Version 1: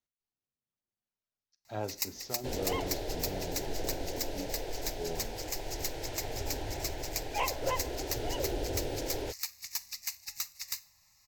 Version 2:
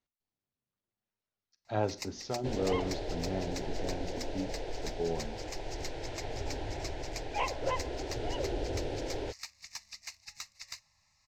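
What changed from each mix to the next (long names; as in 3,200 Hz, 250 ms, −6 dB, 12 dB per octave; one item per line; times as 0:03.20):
speech +6.0 dB
first sound: send −11.5 dB
master: add high-frequency loss of the air 93 metres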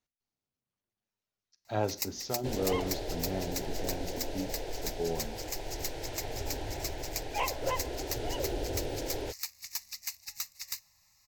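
master: remove high-frequency loss of the air 93 metres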